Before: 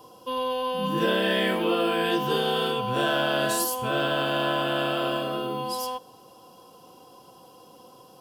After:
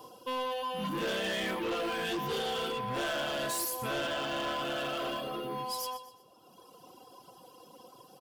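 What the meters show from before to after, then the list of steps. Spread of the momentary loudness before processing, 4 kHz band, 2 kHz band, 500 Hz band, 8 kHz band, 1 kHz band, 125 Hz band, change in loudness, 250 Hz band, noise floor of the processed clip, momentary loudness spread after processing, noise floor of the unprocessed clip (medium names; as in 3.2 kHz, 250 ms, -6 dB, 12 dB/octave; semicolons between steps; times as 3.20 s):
6 LU, -7.5 dB, -7.5 dB, -9.0 dB, -5.0 dB, -7.5 dB, -10.0 dB, -8.0 dB, -9.5 dB, -58 dBFS, 5 LU, -52 dBFS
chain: reverb removal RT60 1.5 s; bass shelf 150 Hz -5 dB; on a send: feedback delay 124 ms, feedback 37%, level -14.5 dB; on the sum: saturation -30 dBFS, distortion -9 dB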